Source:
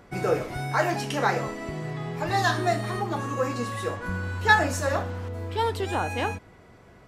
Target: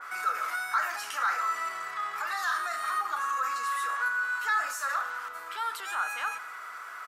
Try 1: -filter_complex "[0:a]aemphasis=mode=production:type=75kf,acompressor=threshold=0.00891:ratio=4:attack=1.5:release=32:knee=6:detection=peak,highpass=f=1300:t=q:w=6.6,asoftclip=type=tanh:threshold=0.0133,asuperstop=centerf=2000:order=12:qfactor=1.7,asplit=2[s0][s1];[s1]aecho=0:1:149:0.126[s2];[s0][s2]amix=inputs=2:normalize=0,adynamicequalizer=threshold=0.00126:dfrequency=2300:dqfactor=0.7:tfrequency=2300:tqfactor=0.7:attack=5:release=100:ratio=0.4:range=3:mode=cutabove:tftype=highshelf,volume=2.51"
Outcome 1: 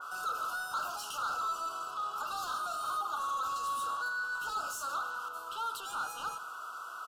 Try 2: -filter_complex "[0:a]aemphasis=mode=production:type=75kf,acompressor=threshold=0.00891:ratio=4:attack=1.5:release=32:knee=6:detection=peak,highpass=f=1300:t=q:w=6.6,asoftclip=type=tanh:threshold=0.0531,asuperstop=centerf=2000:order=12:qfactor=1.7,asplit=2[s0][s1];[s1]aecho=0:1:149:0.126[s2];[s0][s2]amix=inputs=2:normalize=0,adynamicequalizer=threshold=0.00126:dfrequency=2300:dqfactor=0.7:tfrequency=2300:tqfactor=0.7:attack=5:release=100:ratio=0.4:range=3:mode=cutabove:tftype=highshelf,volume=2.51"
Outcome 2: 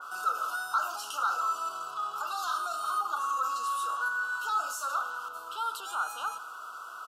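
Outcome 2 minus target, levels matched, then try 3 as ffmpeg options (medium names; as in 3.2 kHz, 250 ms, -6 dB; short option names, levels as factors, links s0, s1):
2 kHz band -3.5 dB
-filter_complex "[0:a]aemphasis=mode=production:type=75kf,acompressor=threshold=0.00891:ratio=4:attack=1.5:release=32:knee=6:detection=peak,highpass=f=1300:t=q:w=6.6,asoftclip=type=tanh:threshold=0.0531,asplit=2[s0][s1];[s1]aecho=0:1:149:0.126[s2];[s0][s2]amix=inputs=2:normalize=0,adynamicequalizer=threshold=0.00126:dfrequency=2300:dqfactor=0.7:tfrequency=2300:tqfactor=0.7:attack=5:release=100:ratio=0.4:range=3:mode=cutabove:tftype=highshelf,volume=2.51"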